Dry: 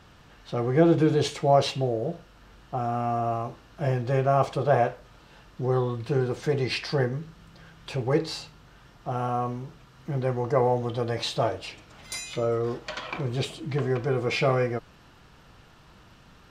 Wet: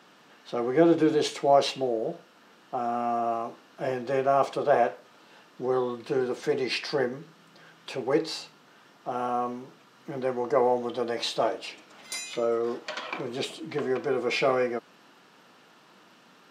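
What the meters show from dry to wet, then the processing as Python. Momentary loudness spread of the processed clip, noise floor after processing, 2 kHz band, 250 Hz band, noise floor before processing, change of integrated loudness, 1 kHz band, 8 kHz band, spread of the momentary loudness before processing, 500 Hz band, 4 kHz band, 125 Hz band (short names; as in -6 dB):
14 LU, -57 dBFS, 0.0 dB, -1.0 dB, -54 dBFS, -1.0 dB, 0.0 dB, 0.0 dB, 15 LU, 0.0 dB, 0.0 dB, -15.0 dB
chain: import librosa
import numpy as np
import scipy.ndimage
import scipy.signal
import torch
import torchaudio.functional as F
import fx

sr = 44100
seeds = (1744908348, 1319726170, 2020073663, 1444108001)

y = scipy.signal.sosfilt(scipy.signal.butter(4, 210.0, 'highpass', fs=sr, output='sos'), x)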